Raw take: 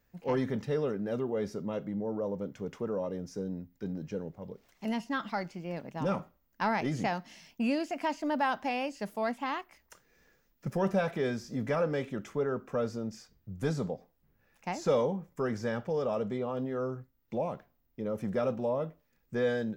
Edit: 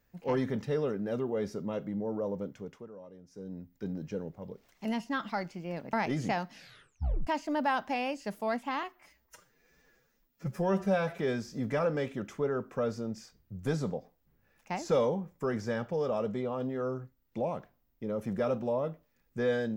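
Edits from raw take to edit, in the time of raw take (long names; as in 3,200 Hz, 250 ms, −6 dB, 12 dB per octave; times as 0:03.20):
0:02.40–0:03.77: duck −15 dB, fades 0.49 s linear
0:05.93–0:06.68: remove
0:07.26: tape stop 0.76 s
0:09.58–0:11.15: time-stretch 1.5×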